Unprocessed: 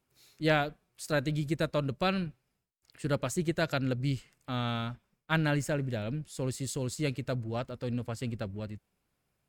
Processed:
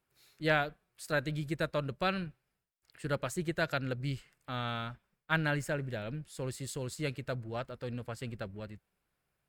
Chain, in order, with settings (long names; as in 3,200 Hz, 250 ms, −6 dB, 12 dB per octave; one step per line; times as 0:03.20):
graphic EQ with 15 bands 100 Hz −4 dB, 250 Hz −5 dB, 1,600 Hz +4 dB, 6,300 Hz −4 dB
level −2.5 dB